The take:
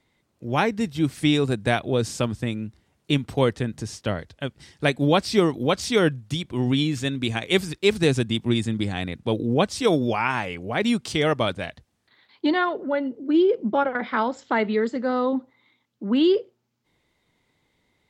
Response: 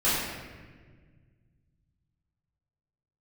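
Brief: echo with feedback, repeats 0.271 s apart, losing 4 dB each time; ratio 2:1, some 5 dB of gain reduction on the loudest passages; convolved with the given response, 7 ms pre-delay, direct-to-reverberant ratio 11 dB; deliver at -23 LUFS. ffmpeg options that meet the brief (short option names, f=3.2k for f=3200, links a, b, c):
-filter_complex "[0:a]acompressor=threshold=-23dB:ratio=2,aecho=1:1:271|542|813|1084|1355|1626|1897|2168|2439:0.631|0.398|0.25|0.158|0.0994|0.0626|0.0394|0.0249|0.0157,asplit=2[a][b];[1:a]atrim=start_sample=2205,adelay=7[c];[b][c]afir=irnorm=-1:irlink=0,volume=-25dB[d];[a][d]amix=inputs=2:normalize=0,volume=1.5dB"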